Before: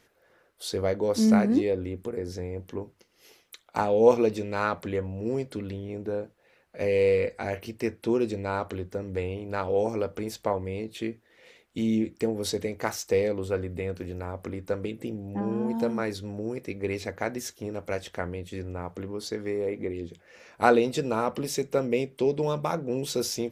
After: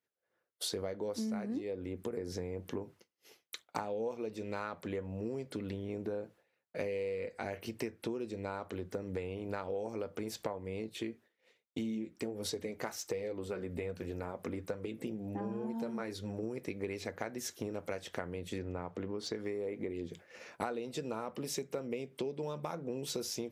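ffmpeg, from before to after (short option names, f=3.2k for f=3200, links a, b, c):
-filter_complex "[0:a]asettb=1/sr,asplit=3[a][b][c];[a]atrim=end=10.894[d];[b]atrim=start=10.89:end=16.43,asetpts=PTS-STARTPTS,afade=t=in:d=0.004:c=qsin,afade=t=out:st=5.536:d=0.004:c=qsin,flanger=delay=1.1:depth=4.5:regen=-52:speed=1.3:shape=triangular[e];[c]atrim=start=16.426[f];[d][e]acrossfade=d=0.004:c1=hsin:c2=qsin[g];[g][f]acrossfade=d=0.004:c1=qsin:c2=hsin,asettb=1/sr,asplit=3[h][i][j];[h]atrim=end=18.584[k];[i]atrim=start=18.58:end=19.35,asetpts=PTS-STARTPTS,afade=t=in:d=0.004:c=qsin,afade=t=out:st=0.766:d=0.004:c=qsin,adynamicsmooth=sensitivity=3:basefreq=6.3k[l];[j]atrim=start=19.346[m];[k][l]acrossfade=d=0.004:c1=hsin:c2=qsin[n];[n][m]acrossfade=d=0.004:c1=qsin:c2=hsin,agate=range=-33dB:threshold=-47dB:ratio=3:detection=peak,highpass=100,acompressor=threshold=-38dB:ratio=12,volume=3.5dB"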